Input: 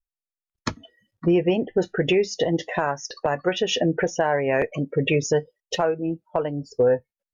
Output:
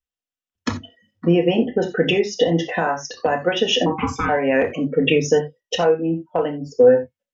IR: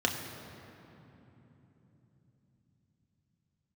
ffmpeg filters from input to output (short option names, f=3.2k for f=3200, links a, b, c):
-filter_complex "[0:a]asettb=1/sr,asplit=3[a][b][c];[a]atrim=end=3.864[d];[b]atrim=start=3.86:end=4.29,asetpts=PTS-STARTPTS,afade=t=in:d=0.004:c=qsin,afade=t=out:st=0.426:d=0.004:c=qsin,aeval=exprs='val(0)*sin(2*PI*630*n/s)':c=same[e];[c]atrim=start=4.286[f];[d][e]acrossfade=d=0.004:c1=hsin:c2=qsin[g];[g][f]acrossfade=d=0.004:c1=qsin:c2=hsin[h];[1:a]atrim=start_sample=2205,afade=t=out:st=0.14:d=0.01,atrim=end_sample=6615[i];[h][i]afir=irnorm=-1:irlink=0,volume=-5dB"